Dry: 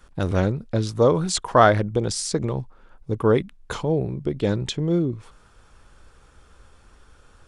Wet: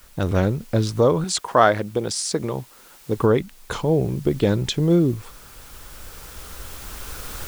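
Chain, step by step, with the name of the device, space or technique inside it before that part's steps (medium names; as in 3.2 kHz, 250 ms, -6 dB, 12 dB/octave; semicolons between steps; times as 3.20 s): cheap recorder with automatic gain (white noise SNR 30 dB; recorder AGC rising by 5.1 dB/s); 1.24–3.18 s: high-pass 230 Hz 6 dB/octave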